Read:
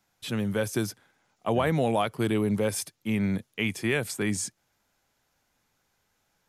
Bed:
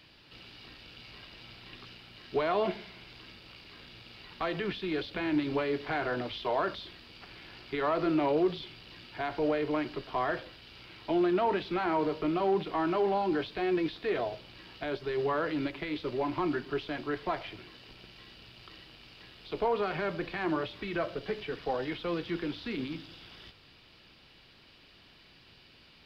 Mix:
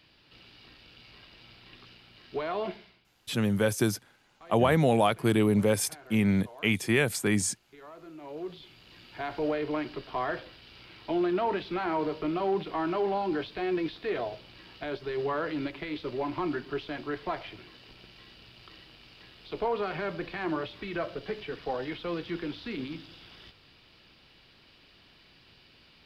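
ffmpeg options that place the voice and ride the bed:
ffmpeg -i stem1.wav -i stem2.wav -filter_complex "[0:a]adelay=3050,volume=2dB[link_01];[1:a]volume=15dB,afade=type=out:start_time=2.68:duration=0.35:silence=0.16788,afade=type=in:start_time=8.19:duration=1.12:silence=0.11885[link_02];[link_01][link_02]amix=inputs=2:normalize=0" out.wav

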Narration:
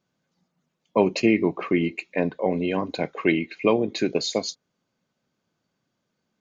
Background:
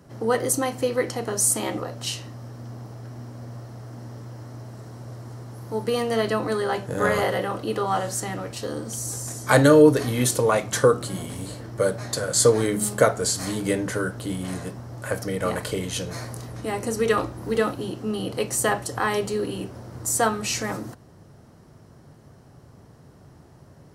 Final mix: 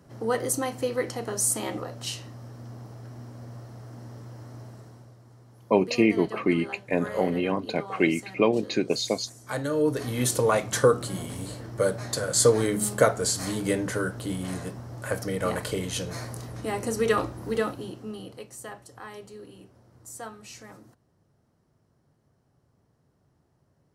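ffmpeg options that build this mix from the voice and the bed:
ffmpeg -i stem1.wav -i stem2.wav -filter_complex "[0:a]adelay=4750,volume=-1.5dB[link_01];[1:a]volume=8.5dB,afade=type=out:start_time=4.64:duration=0.51:silence=0.298538,afade=type=in:start_time=9.7:duration=0.68:silence=0.237137,afade=type=out:start_time=17.28:duration=1.19:silence=0.158489[link_02];[link_01][link_02]amix=inputs=2:normalize=0" out.wav

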